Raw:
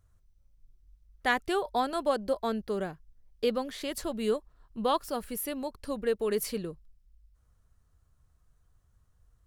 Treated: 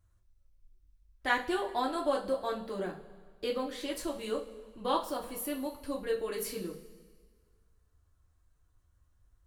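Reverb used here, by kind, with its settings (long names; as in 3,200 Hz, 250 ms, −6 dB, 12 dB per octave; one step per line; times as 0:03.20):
coupled-rooms reverb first 0.28 s, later 1.7 s, from −17 dB, DRR −2.5 dB
level −6.5 dB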